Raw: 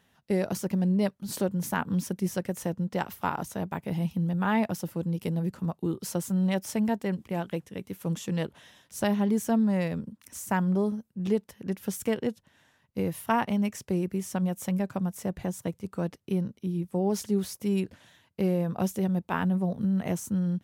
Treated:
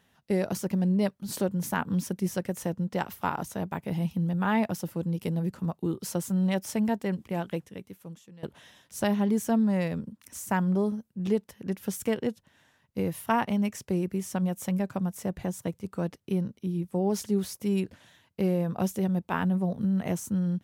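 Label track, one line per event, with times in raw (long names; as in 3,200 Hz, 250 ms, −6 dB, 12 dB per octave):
7.590000	8.430000	fade out quadratic, to −22 dB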